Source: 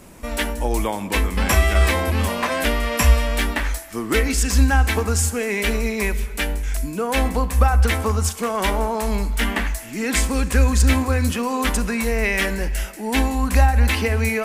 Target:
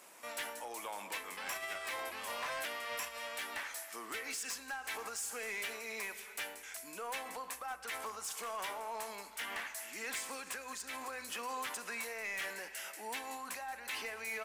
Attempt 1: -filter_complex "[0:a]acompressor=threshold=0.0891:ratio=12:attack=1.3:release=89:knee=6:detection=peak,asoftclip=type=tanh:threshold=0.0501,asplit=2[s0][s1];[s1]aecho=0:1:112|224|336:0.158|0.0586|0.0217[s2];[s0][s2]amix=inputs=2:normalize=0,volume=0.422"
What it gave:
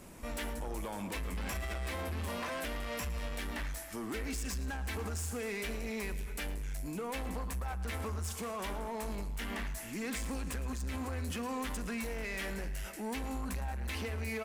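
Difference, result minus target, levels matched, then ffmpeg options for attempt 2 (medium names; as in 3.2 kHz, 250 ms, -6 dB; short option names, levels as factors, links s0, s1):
echo-to-direct +8 dB; 1 kHz band -3.0 dB
-filter_complex "[0:a]acompressor=threshold=0.0891:ratio=12:attack=1.3:release=89:knee=6:detection=peak,highpass=720,asoftclip=type=tanh:threshold=0.0501,asplit=2[s0][s1];[s1]aecho=0:1:112|224:0.0631|0.0233[s2];[s0][s2]amix=inputs=2:normalize=0,volume=0.422"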